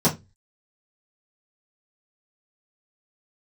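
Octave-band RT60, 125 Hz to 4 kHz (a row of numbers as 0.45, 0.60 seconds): 0.40, 0.30, 0.25, 0.20, 0.20, 0.20 seconds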